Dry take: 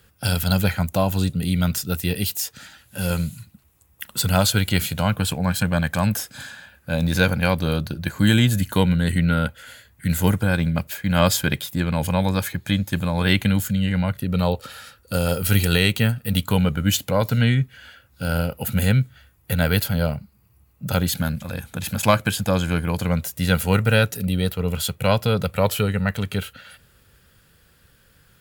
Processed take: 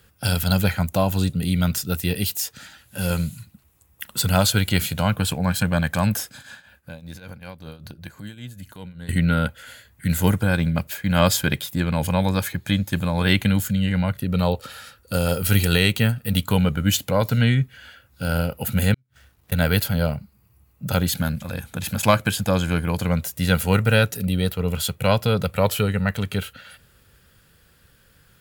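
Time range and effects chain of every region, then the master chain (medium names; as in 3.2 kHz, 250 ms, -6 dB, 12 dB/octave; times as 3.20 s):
6.29–9.09 s: compression 5:1, threshold -32 dBFS + tremolo triangle 5.2 Hz, depth 80%
18.94–19.52 s: dead-time distortion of 0.11 ms + inverted gate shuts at -17 dBFS, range -32 dB + compression 8:1, threshold -46 dBFS
whole clip: none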